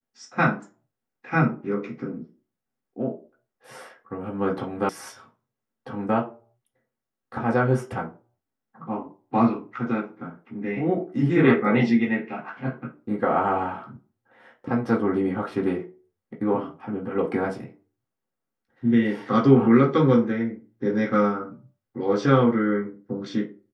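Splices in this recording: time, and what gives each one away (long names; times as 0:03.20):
0:04.89: cut off before it has died away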